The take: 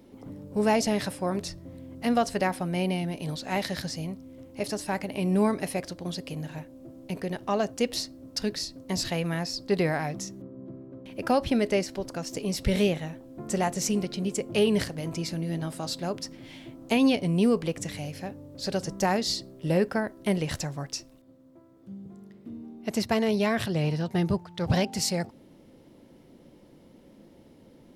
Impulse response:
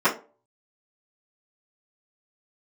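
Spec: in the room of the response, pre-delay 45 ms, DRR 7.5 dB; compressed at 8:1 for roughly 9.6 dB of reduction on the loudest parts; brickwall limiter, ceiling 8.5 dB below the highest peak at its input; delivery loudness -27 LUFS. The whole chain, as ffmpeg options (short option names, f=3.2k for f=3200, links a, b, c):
-filter_complex "[0:a]acompressor=threshold=-28dB:ratio=8,alimiter=level_in=1dB:limit=-24dB:level=0:latency=1,volume=-1dB,asplit=2[a][b];[1:a]atrim=start_sample=2205,adelay=45[c];[b][c]afir=irnorm=-1:irlink=0,volume=-25.5dB[d];[a][d]amix=inputs=2:normalize=0,volume=8dB"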